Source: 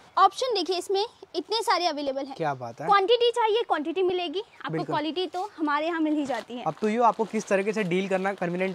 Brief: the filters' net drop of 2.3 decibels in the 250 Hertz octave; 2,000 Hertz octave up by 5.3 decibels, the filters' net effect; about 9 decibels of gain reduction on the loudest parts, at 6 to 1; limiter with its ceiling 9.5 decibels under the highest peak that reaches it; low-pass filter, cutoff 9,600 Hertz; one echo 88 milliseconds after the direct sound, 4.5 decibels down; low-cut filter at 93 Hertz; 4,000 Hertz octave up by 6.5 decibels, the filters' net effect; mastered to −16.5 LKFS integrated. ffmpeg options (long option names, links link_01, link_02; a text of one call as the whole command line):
ffmpeg -i in.wav -af "highpass=93,lowpass=9600,equalizer=frequency=250:width_type=o:gain=-3.5,equalizer=frequency=2000:width_type=o:gain=5,equalizer=frequency=4000:width_type=o:gain=7,acompressor=threshold=-23dB:ratio=6,alimiter=limit=-22dB:level=0:latency=1,aecho=1:1:88:0.596,volume=14dB" out.wav